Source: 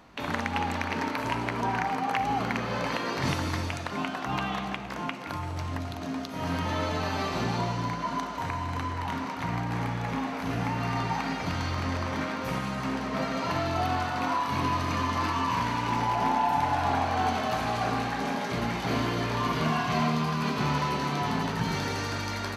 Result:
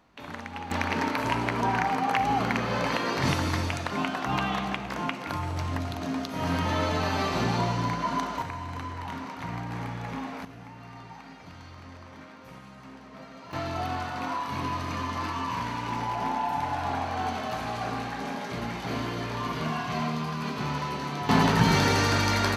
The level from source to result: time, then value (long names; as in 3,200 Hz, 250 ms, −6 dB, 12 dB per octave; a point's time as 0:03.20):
−8.5 dB
from 0:00.71 +2.5 dB
from 0:08.42 −4 dB
from 0:10.45 −15.5 dB
from 0:13.53 −3.5 dB
from 0:21.29 +8 dB